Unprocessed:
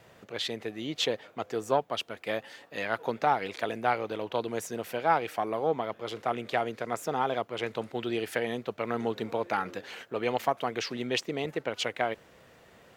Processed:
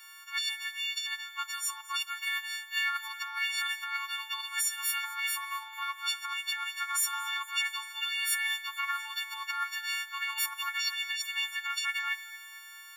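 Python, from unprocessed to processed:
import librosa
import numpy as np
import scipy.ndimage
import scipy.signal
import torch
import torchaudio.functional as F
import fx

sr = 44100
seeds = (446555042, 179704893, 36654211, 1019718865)

y = fx.freq_snap(x, sr, grid_st=4)
y = fx.over_compress(y, sr, threshold_db=-29.0, ratio=-1.0)
y = scipy.signal.sosfilt(scipy.signal.butter(12, 1000.0, 'highpass', fs=sr, output='sos'), y)
y = fx.echo_feedback(y, sr, ms=225, feedback_pct=52, wet_db=-20)
y = fx.rev_fdn(y, sr, rt60_s=0.84, lf_ratio=1.0, hf_ratio=0.6, size_ms=66.0, drr_db=15.0)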